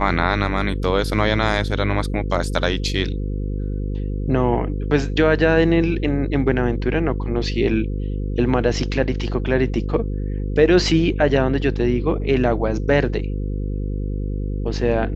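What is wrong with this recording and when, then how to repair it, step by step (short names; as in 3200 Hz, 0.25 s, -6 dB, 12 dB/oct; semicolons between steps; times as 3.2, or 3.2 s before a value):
buzz 50 Hz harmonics 10 -24 dBFS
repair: de-hum 50 Hz, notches 10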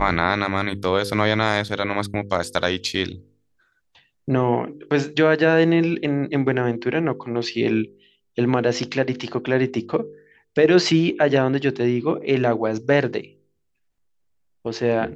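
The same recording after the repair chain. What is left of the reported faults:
none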